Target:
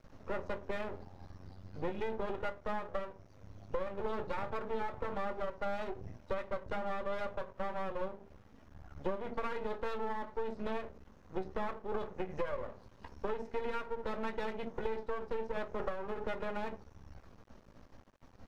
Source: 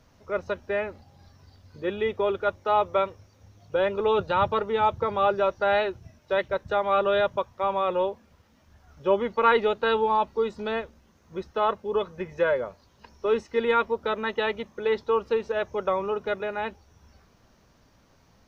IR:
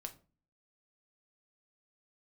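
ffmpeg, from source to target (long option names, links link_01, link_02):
-filter_complex "[1:a]atrim=start_sample=2205,asetrate=70560,aresample=44100[link_01];[0:a][link_01]afir=irnorm=-1:irlink=0,acompressor=threshold=-42dB:ratio=10,aeval=exprs='max(val(0),0)':channel_layout=same,highshelf=frequency=2500:gain=-11.5,volume=13dB"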